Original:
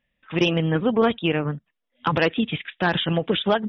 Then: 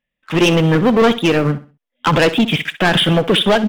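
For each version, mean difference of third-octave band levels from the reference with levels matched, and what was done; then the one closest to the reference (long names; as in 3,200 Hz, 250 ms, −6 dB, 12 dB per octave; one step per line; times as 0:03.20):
7.5 dB: parametric band 73 Hz −10.5 dB 0.81 octaves
leveller curve on the samples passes 3
repeating echo 64 ms, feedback 30%, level −15 dB
level +1.5 dB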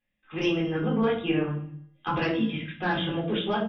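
5.5 dB: tuned comb filter 110 Hz, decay 0.93 s, harmonics odd, mix 60%
on a send: repeating echo 107 ms, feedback 49%, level −23.5 dB
on the sum: rectangular room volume 310 cubic metres, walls furnished, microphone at 3.8 metres
level −5.5 dB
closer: second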